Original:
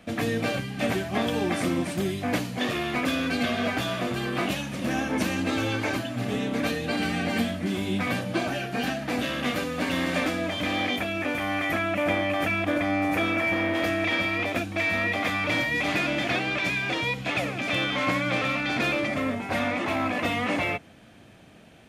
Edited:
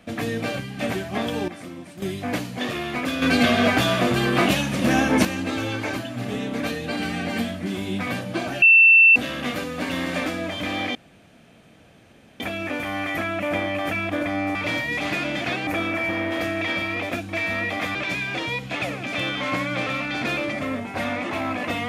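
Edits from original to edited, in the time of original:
1.48–2.02 s: gain -11.5 dB
3.22–5.25 s: gain +8 dB
8.62–9.16 s: bleep 2.68 kHz -9 dBFS
10.95 s: insert room tone 1.45 s
15.38–16.50 s: move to 13.10 s

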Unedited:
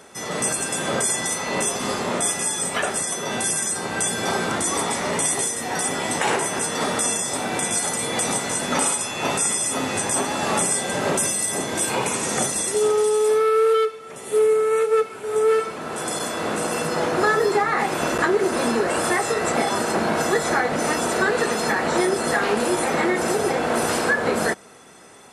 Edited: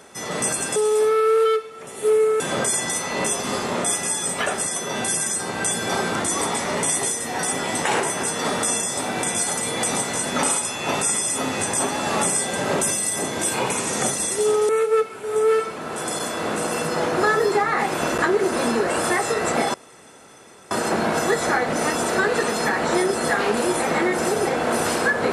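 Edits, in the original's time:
13.05–14.69 s: move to 0.76 s
19.74 s: insert room tone 0.97 s

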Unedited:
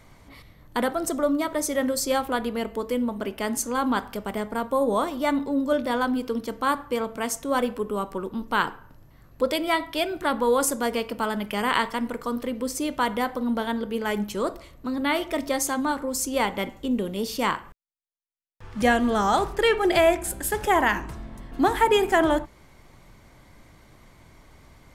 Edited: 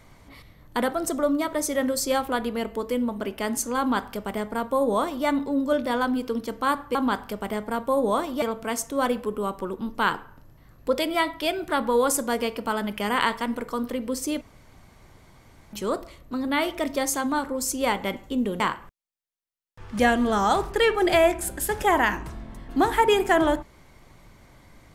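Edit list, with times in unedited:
3.79–5.26 s: copy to 6.95 s
12.94–14.26 s: room tone
17.13–17.43 s: delete

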